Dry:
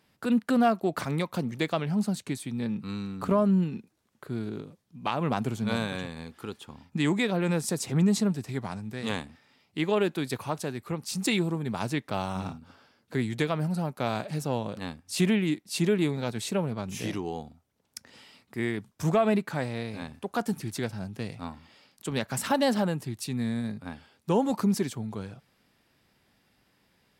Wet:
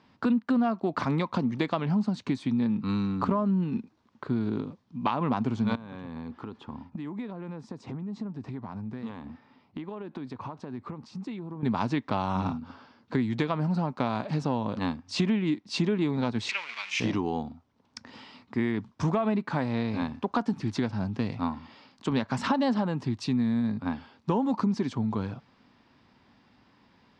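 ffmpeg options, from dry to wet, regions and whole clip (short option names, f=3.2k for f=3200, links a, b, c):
-filter_complex "[0:a]asettb=1/sr,asplit=3[a][b][c];[a]atrim=end=5.754[d];[b]atrim=start=5.75:end=11.63,asetpts=PTS-STARTPTS,afade=t=in:d=0.004:c=qsin,afade=t=out:st=5.876:d=0.004:c=qsin,acompressor=threshold=-39dB:ratio=20:attack=3.2:release=140:knee=1:detection=peak,highshelf=f=2.2k:g=-11[e];[c]atrim=start=11.626[f];[d][e]acrossfade=d=0.004:c1=hsin:c2=qsin[g];[g][f]acrossfade=d=0.004:c1=qsin:c2=hsin,asettb=1/sr,asplit=3[h][i][j];[h]atrim=end=16.494[k];[i]atrim=start=16.49:end=17,asetpts=PTS-STARTPTS,afade=t=in:d=0.004:c=qsin,afade=t=out:st=0.506:d=0.004:c=qsin,aeval=exprs='val(0)+0.5*0.0168*sgn(val(0))':c=same,acompressor=mode=upward:threshold=-28dB:ratio=2.5:attack=3.2:release=140:knee=2.83:detection=peak,highpass=f=2.3k:t=q:w=3.7[l];[j]atrim=start=16.996[m];[k][l]acrossfade=d=0.004:c1=hsin:c2=qsin[n];[n][m]acrossfade=d=0.004:c1=qsin:c2=hsin,equalizer=f=100:t=o:w=0.67:g=4,equalizer=f=250:t=o:w=0.67:g=9,equalizer=f=1k:t=o:w=0.67:g=9,acompressor=threshold=-26dB:ratio=5,lowpass=f=5.5k:w=0.5412,lowpass=f=5.5k:w=1.3066,volume=2.5dB"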